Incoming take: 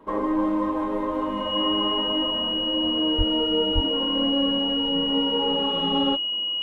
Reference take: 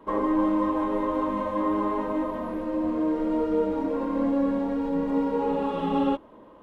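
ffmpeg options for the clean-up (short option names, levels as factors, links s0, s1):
-filter_complex "[0:a]bandreject=f=2900:w=30,asplit=3[s0][s1][s2];[s0]afade=t=out:st=3.17:d=0.02[s3];[s1]highpass=f=140:w=0.5412,highpass=f=140:w=1.3066,afade=t=in:st=3.17:d=0.02,afade=t=out:st=3.29:d=0.02[s4];[s2]afade=t=in:st=3.29:d=0.02[s5];[s3][s4][s5]amix=inputs=3:normalize=0,asplit=3[s6][s7][s8];[s6]afade=t=out:st=3.74:d=0.02[s9];[s7]highpass=f=140:w=0.5412,highpass=f=140:w=1.3066,afade=t=in:st=3.74:d=0.02,afade=t=out:st=3.86:d=0.02[s10];[s8]afade=t=in:st=3.86:d=0.02[s11];[s9][s10][s11]amix=inputs=3:normalize=0"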